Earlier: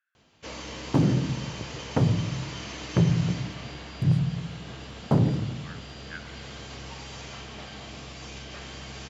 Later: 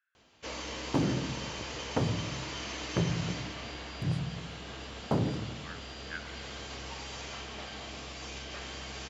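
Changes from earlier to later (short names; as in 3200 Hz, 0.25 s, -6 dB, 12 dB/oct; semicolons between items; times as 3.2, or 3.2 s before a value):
second sound -3.0 dB; master: add bell 140 Hz -7.5 dB 1.3 oct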